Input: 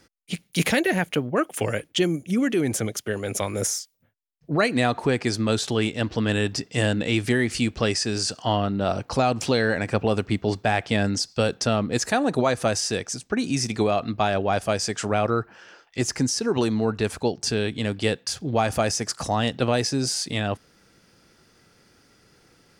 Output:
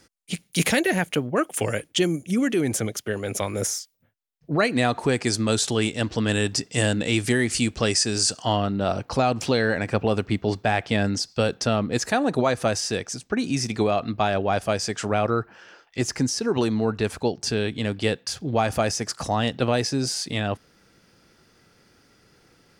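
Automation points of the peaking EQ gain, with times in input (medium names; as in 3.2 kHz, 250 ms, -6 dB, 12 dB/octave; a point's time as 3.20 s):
peaking EQ 8.4 kHz 1.2 oct
2.39 s +5 dB
3.02 s -1.5 dB
4.68 s -1.5 dB
5.15 s +8 dB
8.51 s +8 dB
9.02 s -2.5 dB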